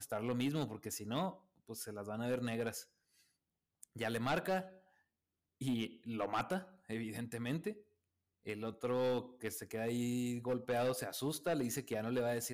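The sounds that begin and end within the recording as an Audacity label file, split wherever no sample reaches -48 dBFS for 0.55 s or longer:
3.830000	4.690000	sound
5.610000	7.770000	sound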